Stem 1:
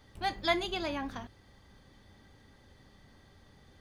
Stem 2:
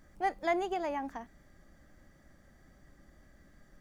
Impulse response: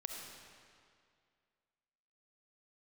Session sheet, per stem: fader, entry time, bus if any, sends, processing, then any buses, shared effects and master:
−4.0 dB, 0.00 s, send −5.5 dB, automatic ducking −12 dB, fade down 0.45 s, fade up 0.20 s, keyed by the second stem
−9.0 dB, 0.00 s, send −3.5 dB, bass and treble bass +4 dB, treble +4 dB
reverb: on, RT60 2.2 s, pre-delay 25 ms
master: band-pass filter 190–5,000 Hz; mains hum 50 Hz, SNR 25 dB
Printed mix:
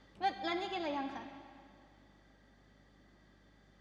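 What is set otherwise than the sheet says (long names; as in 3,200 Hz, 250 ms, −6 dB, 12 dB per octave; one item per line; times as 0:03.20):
as on the sheet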